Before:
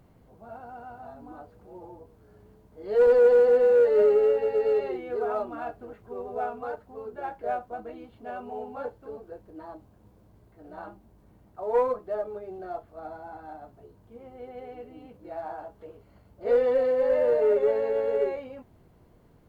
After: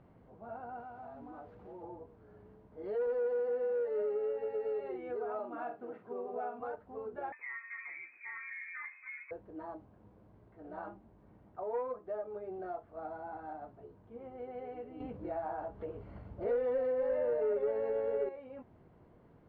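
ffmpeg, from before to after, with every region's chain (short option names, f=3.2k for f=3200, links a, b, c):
-filter_complex "[0:a]asettb=1/sr,asplit=3[a][b][c];[a]atrim=end=0.804[d];[b]atrim=start=0.8:end=1.83,asetpts=PTS-STARTPTS,afade=t=in:d=0.004:c=qsin,afade=t=out:st=1.026:d=0.004:c=qsin,aeval=exprs='val(0)+0.5*0.00112*sgn(val(0))':c=same,acompressor=threshold=-44dB:ratio=3:attack=3.2:release=140:knee=1:detection=peak[e];[c]atrim=start=1.826[f];[d][e]acrossfade=d=0.004:c1=hsin:c2=qsin[g];[g][f]acrossfade=d=0.004:c1=qsin:c2=hsin,asettb=1/sr,asplit=3[h][i][j];[h]atrim=end=5.394[k];[i]atrim=start=5.39:end=6.6,asetpts=PTS-STARTPTS,afade=t=in:d=0.004:c=qsin,afade=t=out:st=1.206:d=0.004:c=qsin,highpass=f=150:w=0.5412,highpass=f=150:w=1.3066,asplit=2[l][m];[m]adelay=45,volume=-8dB[n];[l][n]amix=inputs=2:normalize=0,atrim=end_sample=53361[o];[j]atrim=start=6.596[p];[k][o]acrossfade=d=0.004:c1=hsin:c2=qsin[q];[q][p]acrossfade=d=0.004:c1=qsin:c2=hsin,asettb=1/sr,asplit=3[r][s][t];[r]atrim=end=7.324[u];[s]atrim=start=7.32:end=9.31,asetpts=PTS-STARTPTS,afade=t=in:d=0.004:c=qsin,afade=t=out:st=1.986:d=0.004:c=qsin,bandreject=f=93.54:t=h:w=4,bandreject=f=187.08:t=h:w=4,bandreject=f=280.62:t=h:w=4,bandreject=f=374.16:t=h:w=4,bandreject=f=467.7:t=h:w=4,bandreject=f=561.24:t=h:w=4,bandreject=f=654.78:t=h:w=4,bandreject=f=748.32:t=h:w=4,bandreject=f=841.86:t=h:w=4,bandreject=f=935.4:t=h:w=4,bandreject=f=1.02894k:t=h:w=4,bandreject=f=1.12248k:t=h:w=4,bandreject=f=1.21602k:t=h:w=4,bandreject=f=1.30956k:t=h:w=4,bandreject=f=1.4031k:t=h:w=4,bandreject=f=1.49664k:t=h:w=4,bandreject=f=1.59018k:t=h:w=4,bandreject=f=1.68372k:t=h:w=4,bandreject=f=1.77726k:t=h:w=4,bandreject=f=1.8708k:t=h:w=4,acompressor=threshold=-37dB:ratio=4:attack=3.2:release=140:knee=1:detection=peak,lowpass=f=2.2k:t=q:w=0.5098,lowpass=f=2.2k:t=q:w=0.6013,lowpass=f=2.2k:t=q:w=0.9,lowpass=f=2.2k:t=q:w=2.563,afreqshift=-2600[v];[t]atrim=start=9.306[w];[u][v]acrossfade=d=0.004:c1=hsin:c2=qsin[x];[x][w]acrossfade=d=0.004:c1=qsin:c2=hsin,asettb=1/sr,asplit=3[y][z][aa];[y]atrim=end=15.004[ab];[z]atrim=start=15:end=18.29,asetpts=PTS-STARTPTS,afade=t=in:d=0.004:c=qsin,afade=t=out:st=3.286:d=0.004:c=qsin,lowshelf=f=120:g=10,acontrast=83[ac];[aa]atrim=start=18.286[ad];[ab][ac]acrossfade=d=0.004:c1=hsin:c2=qsin[ae];[ae][ad]acrossfade=d=0.004:c1=qsin:c2=hsin,lowpass=2.2k,lowshelf=f=69:g=-10,acompressor=threshold=-38dB:ratio=2.5,volume=-1dB"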